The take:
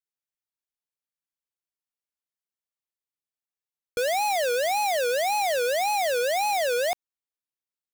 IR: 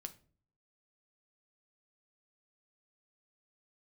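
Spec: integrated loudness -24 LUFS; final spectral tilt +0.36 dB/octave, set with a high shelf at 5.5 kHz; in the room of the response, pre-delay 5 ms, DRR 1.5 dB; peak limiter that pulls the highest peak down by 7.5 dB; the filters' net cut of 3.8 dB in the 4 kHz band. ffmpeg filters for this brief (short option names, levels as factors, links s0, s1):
-filter_complex "[0:a]equalizer=f=4000:t=o:g=-7,highshelf=f=5500:g=5.5,alimiter=level_in=1.41:limit=0.0631:level=0:latency=1,volume=0.708,asplit=2[s0][s1];[1:a]atrim=start_sample=2205,adelay=5[s2];[s1][s2]afir=irnorm=-1:irlink=0,volume=1.41[s3];[s0][s3]amix=inputs=2:normalize=0,volume=1.88"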